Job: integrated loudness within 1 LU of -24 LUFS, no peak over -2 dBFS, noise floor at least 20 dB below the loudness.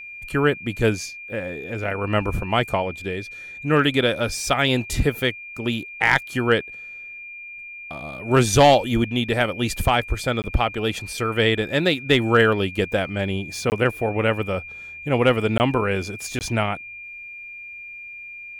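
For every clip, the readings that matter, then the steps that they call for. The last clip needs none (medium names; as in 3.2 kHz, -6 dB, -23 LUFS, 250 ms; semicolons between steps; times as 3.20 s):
dropouts 4; longest dropout 19 ms; steady tone 2.4 kHz; tone level -35 dBFS; loudness -21.5 LUFS; peak level -4.5 dBFS; loudness target -24.0 LUFS
-> interpolate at 10.42/13.70/15.58/16.39 s, 19 ms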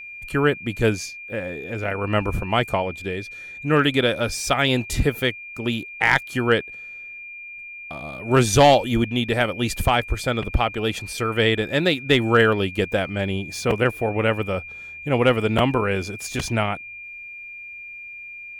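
dropouts 0; steady tone 2.4 kHz; tone level -35 dBFS
-> band-stop 2.4 kHz, Q 30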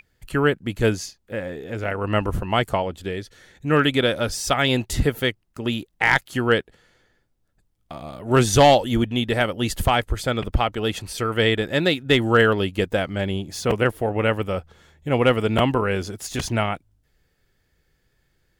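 steady tone not found; loudness -22.0 LUFS; peak level -4.0 dBFS; loudness target -24.0 LUFS
-> trim -2 dB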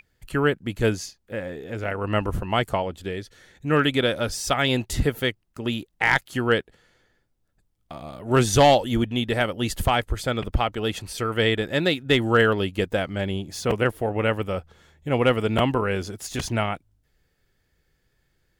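loudness -24.0 LUFS; peak level -6.0 dBFS; noise floor -70 dBFS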